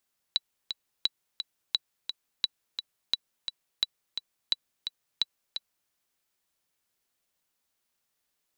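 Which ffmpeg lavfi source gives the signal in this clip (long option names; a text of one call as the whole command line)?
ffmpeg -f lavfi -i "aevalsrc='pow(10,(-11-8*gte(mod(t,2*60/173),60/173))/20)*sin(2*PI*3940*mod(t,60/173))*exp(-6.91*mod(t,60/173)/0.03)':duration=5.54:sample_rate=44100" out.wav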